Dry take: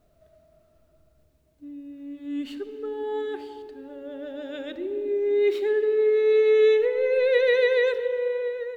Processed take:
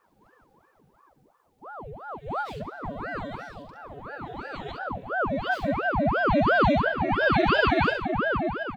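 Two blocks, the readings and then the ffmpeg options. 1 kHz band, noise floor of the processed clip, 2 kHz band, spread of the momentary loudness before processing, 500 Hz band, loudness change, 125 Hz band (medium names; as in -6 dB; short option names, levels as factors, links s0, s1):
+18.0 dB, -64 dBFS, +5.5 dB, 21 LU, -7.5 dB, -2.0 dB, no reading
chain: -af "aecho=1:1:45|67:0.398|0.447,aeval=exprs='val(0)*sin(2*PI*640*n/s+640*0.8/2.9*sin(2*PI*2.9*n/s))':c=same"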